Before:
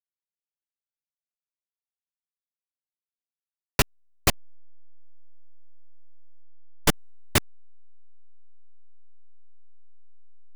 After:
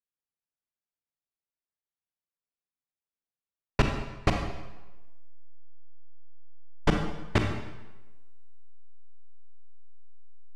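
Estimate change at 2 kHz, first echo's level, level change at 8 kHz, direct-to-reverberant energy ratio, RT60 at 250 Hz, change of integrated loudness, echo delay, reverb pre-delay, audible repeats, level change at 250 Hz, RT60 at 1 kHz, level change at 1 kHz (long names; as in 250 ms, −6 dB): −3.5 dB, no echo audible, −18.0 dB, 3.0 dB, 1.1 s, −4.0 dB, no echo audible, 29 ms, no echo audible, +2.0 dB, 1.1 s, −1.0 dB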